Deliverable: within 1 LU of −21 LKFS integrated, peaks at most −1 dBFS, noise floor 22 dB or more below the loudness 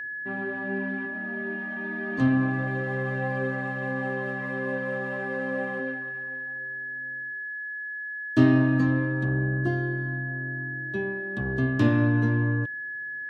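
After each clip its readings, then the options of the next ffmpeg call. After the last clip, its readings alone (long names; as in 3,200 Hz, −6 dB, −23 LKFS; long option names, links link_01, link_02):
interfering tone 1,700 Hz; level of the tone −32 dBFS; integrated loudness −27.5 LKFS; sample peak −7.0 dBFS; target loudness −21.0 LKFS
→ -af "bandreject=frequency=1700:width=30"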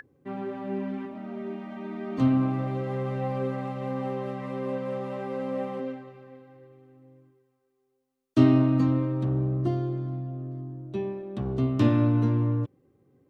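interfering tone none found; integrated loudness −28.0 LKFS; sample peak −7.0 dBFS; target loudness −21.0 LKFS
→ -af "volume=7dB,alimiter=limit=-1dB:level=0:latency=1"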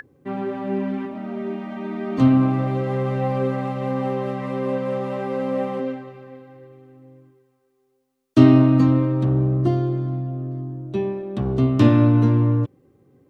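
integrated loudness −21.0 LKFS; sample peak −1.0 dBFS; background noise floor −67 dBFS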